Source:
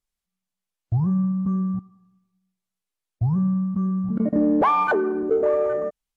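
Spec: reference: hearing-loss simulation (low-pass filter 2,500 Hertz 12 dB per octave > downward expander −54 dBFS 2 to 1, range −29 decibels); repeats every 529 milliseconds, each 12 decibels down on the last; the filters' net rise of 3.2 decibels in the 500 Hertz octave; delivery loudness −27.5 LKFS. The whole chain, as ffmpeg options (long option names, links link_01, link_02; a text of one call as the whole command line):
ffmpeg -i in.wav -af "lowpass=2500,equalizer=frequency=500:width_type=o:gain=4,aecho=1:1:529|1058|1587:0.251|0.0628|0.0157,agate=range=-29dB:threshold=-54dB:ratio=2,volume=-6.5dB" out.wav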